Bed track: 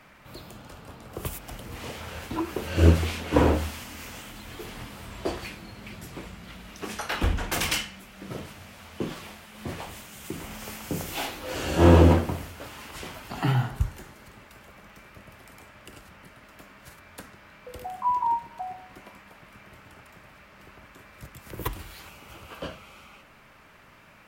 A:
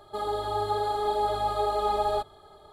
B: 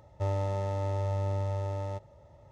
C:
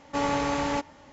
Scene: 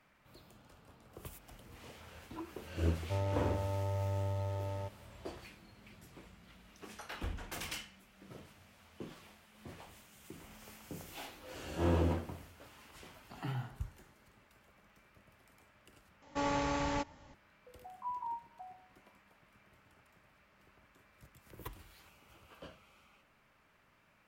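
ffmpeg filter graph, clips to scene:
ffmpeg -i bed.wav -i cue0.wav -i cue1.wav -i cue2.wav -filter_complex "[0:a]volume=-15.5dB[link_01];[3:a]asubboost=boost=5.5:cutoff=180[link_02];[link_01]asplit=2[link_03][link_04];[link_03]atrim=end=16.224[link_05];[link_02]atrim=end=1.12,asetpts=PTS-STARTPTS,volume=-7dB[link_06];[link_04]atrim=start=17.336[link_07];[2:a]atrim=end=2.51,asetpts=PTS-STARTPTS,volume=-5dB,afade=type=in:duration=0.004:curve=hsin,afade=type=out:start_time=2.506:duration=0.004:curve=hsin,adelay=2900[link_08];[link_05][link_06]acrossfade=duration=0.004:curve1=hsin:curve2=hsin[link_09];[link_09][link_07]acrossfade=duration=0.004:curve1=hsin:curve2=hsin[link_10];[link_10][link_08]amix=inputs=2:normalize=0" out.wav

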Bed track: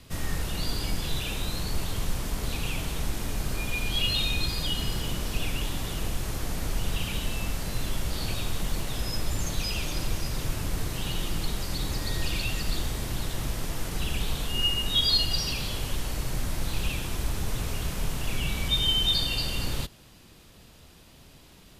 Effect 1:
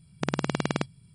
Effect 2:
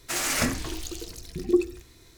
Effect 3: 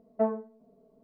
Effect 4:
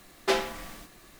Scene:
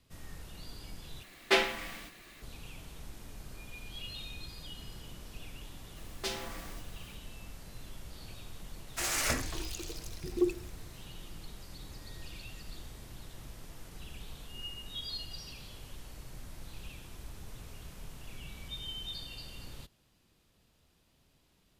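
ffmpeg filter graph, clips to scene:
ffmpeg -i bed.wav -i cue0.wav -i cue1.wav -i cue2.wav -i cue3.wav -filter_complex "[4:a]asplit=2[link_01][link_02];[0:a]volume=-17dB[link_03];[link_01]firequalizer=gain_entry='entry(1100,0);entry(2200,8);entry(5700,0)':delay=0.05:min_phase=1[link_04];[link_02]acrossover=split=200|3000[link_05][link_06][link_07];[link_06]acompressor=threshold=-35dB:ratio=6:attack=3.2:release=140:knee=2.83:detection=peak[link_08];[link_05][link_08][link_07]amix=inputs=3:normalize=0[link_09];[2:a]equalizer=frequency=210:width=1.8:gain=-9.5[link_10];[link_03]asplit=2[link_11][link_12];[link_11]atrim=end=1.234[link_13];[link_04]atrim=end=1.19,asetpts=PTS-STARTPTS,volume=-2.5dB[link_14];[link_12]atrim=start=2.416[link_15];[link_09]atrim=end=1.19,asetpts=PTS-STARTPTS,volume=-3.5dB,afade=type=in:duration=0.004:curve=hsin,afade=type=out:start_time=1.186:duration=0.004:curve=hsin,adelay=5960[link_16];[link_10]atrim=end=2.17,asetpts=PTS-STARTPTS,volume=-5dB,afade=type=in:duration=0.004:curve=hsin,afade=type=out:start_time=2.166:duration=0.004:curve=hsin,adelay=8880[link_17];[link_13][link_14]acrossfade=duration=0.004:curve1=hsin:curve2=hsin[link_18];[link_18][link_15]acrossfade=duration=0.004:curve1=hsin:curve2=hsin[link_19];[link_19][link_16][link_17]amix=inputs=3:normalize=0" out.wav

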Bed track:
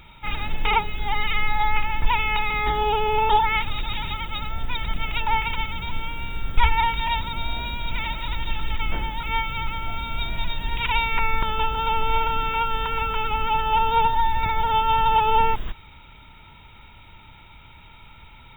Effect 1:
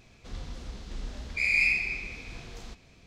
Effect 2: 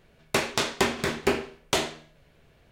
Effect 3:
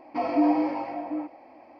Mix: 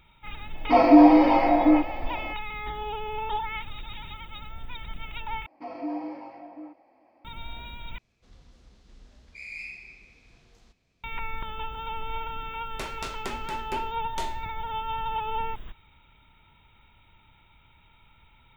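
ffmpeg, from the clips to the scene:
ffmpeg -i bed.wav -i cue0.wav -i cue1.wav -i cue2.wav -filter_complex "[3:a]asplit=2[link_01][link_02];[0:a]volume=-11.5dB[link_03];[link_01]dynaudnorm=framelen=110:gausssize=3:maxgain=15dB[link_04];[link_03]asplit=3[link_05][link_06][link_07];[link_05]atrim=end=5.464[link_08];[link_02]atrim=end=1.79,asetpts=PTS-STARTPTS,volume=-11dB[link_09];[link_06]atrim=start=7.246:end=7.984[link_10];[1:a]atrim=end=3.06,asetpts=PTS-STARTPTS,volume=-15dB[link_11];[link_07]atrim=start=11.036[link_12];[link_04]atrim=end=1.79,asetpts=PTS-STARTPTS,volume=-2dB,afade=type=in:duration=0.004:curve=hsin,afade=type=out:start_time=1.786:duration=0.004:curve=hsin,adelay=550[link_13];[2:a]atrim=end=2.71,asetpts=PTS-STARTPTS,volume=-12.5dB,afade=type=in:duration=0.004:curve=hsin,afade=type=out:start_time=2.706:duration=0.004:curve=hsin,adelay=12450[link_14];[link_08][link_09]acrossfade=duration=0.004:curve1=hsin:curve2=hsin[link_15];[link_15][link_10]acrossfade=duration=0.004:curve1=hsin:curve2=hsin[link_16];[link_16][link_11]acrossfade=duration=0.004:curve1=hsin:curve2=hsin[link_17];[link_17][link_12]acrossfade=duration=0.004:curve1=hsin:curve2=hsin[link_18];[link_18][link_13][link_14]amix=inputs=3:normalize=0" out.wav

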